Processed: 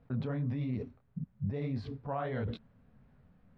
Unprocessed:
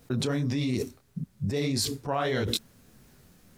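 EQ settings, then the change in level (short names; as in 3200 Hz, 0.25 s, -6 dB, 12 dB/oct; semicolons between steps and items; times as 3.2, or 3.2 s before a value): LPF 1200 Hz 6 dB/oct; air absorption 340 m; bell 350 Hz -13 dB 0.42 oct; -3.5 dB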